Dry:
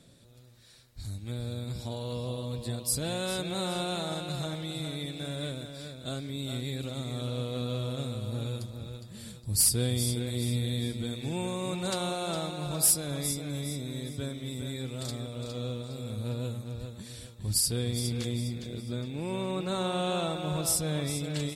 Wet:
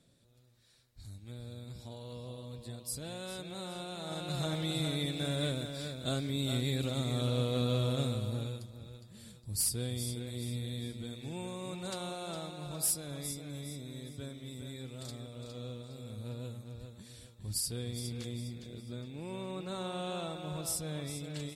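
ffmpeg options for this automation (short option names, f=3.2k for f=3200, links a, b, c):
-af "volume=2dB,afade=t=in:st=3.97:d=0.68:silence=0.251189,afade=t=out:st=8.05:d=0.56:silence=0.316228"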